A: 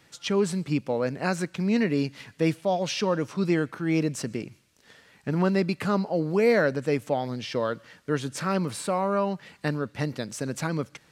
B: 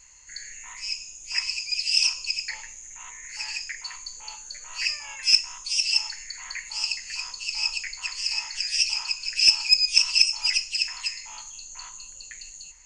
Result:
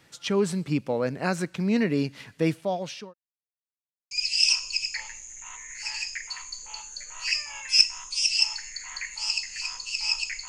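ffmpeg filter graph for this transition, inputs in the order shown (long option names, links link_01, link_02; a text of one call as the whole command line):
ffmpeg -i cue0.wav -i cue1.wav -filter_complex "[0:a]apad=whole_dur=10.48,atrim=end=10.48,asplit=2[link_01][link_02];[link_01]atrim=end=3.14,asetpts=PTS-STARTPTS,afade=type=out:start_time=2.29:duration=0.85:curve=qsin[link_03];[link_02]atrim=start=3.14:end=4.11,asetpts=PTS-STARTPTS,volume=0[link_04];[1:a]atrim=start=1.65:end=8.02,asetpts=PTS-STARTPTS,afade=type=in:duration=0.004:curve=hsin[link_05];[link_03][link_04][link_05]concat=n=3:v=0:a=1" out.wav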